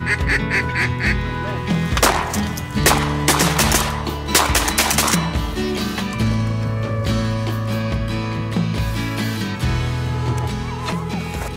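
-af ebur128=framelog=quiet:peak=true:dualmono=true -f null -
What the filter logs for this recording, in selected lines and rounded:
Integrated loudness:
  I:         -16.4 LUFS
  Threshold: -26.4 LUFS
Loudness range:
  LRA:         5.4 LU
  Threshold: -36.1 LUFS
  LRA low:   -19.2 LUFS
  LRA high:  -13.8 LUFS
True peak:
  Peak:       -3.1 dBFS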